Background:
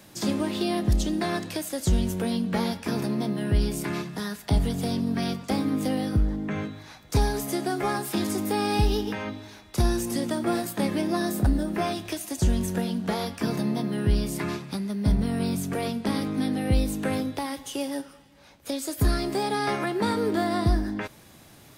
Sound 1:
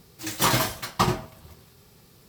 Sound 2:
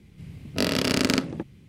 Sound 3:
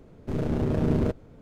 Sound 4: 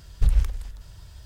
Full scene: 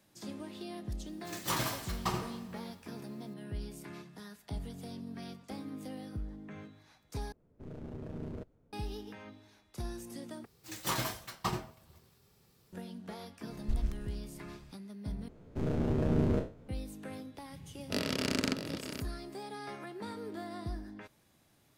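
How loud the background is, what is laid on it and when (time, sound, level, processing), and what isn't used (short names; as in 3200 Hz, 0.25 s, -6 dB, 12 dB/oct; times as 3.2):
background -17 dB
1.06 add 1 -12 dB + Schroeder reverb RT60 1.2 s, DRR 7.5 dB
7.32 replace with 3 -18 dB + mismatched tape noise reduction decoder only
10.45 replace with 1 -12 dB
13.47 add 4 -13 dB
15.28 replace with 3 -6 dB + spectral trails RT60 0.34 s
17.34 add 2 -9.5 dB + echo 0.643 s -9 dB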